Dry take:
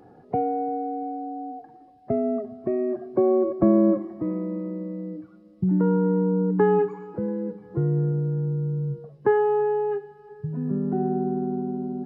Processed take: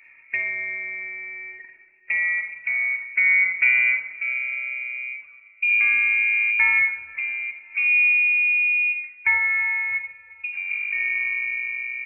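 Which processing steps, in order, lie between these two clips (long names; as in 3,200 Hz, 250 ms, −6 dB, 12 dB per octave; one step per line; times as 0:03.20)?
running median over 25 samples
voice inversion scrambler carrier 2,600 Hz
comb and all-pass reverb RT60 0.88 s, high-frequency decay 0.45×, pre-delay 10 ms, DRR 7 dB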